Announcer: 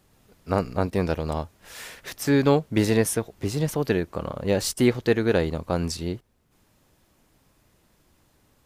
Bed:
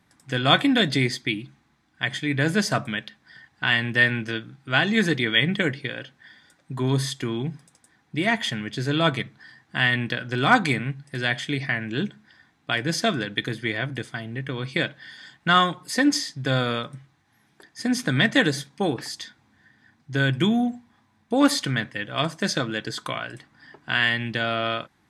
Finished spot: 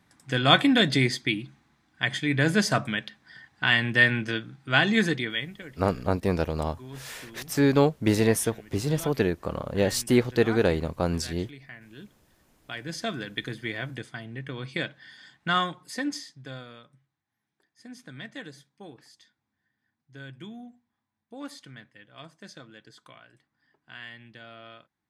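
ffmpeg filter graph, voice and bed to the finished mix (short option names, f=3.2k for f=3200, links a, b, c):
-filter_complex "[0:a]adelay=5300,volume=-1dB[a];[1:a]volume=13dB,afade=t=out:st=4.9:d=0.62:silence=0.112202,afade=t=in:st=12.4:d=0.99:silence=0.211349,afade=t=out:st=15.45:d=1.23:silence=0.177828[b];[a][b]amix=inputs=2:normalize=0"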